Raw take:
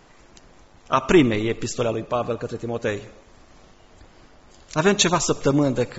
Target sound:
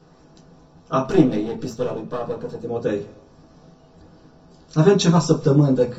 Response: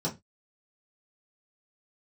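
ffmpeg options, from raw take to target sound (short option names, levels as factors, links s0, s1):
-filter_complex "[0:a]asplit=3[s0][s1][s2];[s0]afade=t=out:st=1.04:d=0.02[s3];[s1]aeval=exprs='if(lt(val(0),0),0.251*val(0),val(0))':c=same,afade=t=in:st=1.04:d=0.02,afade=t=out:st=2.63:d=0.02[s4];[s2]afade=t=in:st=2.63:d=0.02[s5];[s3][s4][s5]amix=inputs=3:normalize=0[s6];[1:a]atrim=start_sample=2205[s7];[s6][s7]afir=irnorm=-1:irlink=0,volume=0.355"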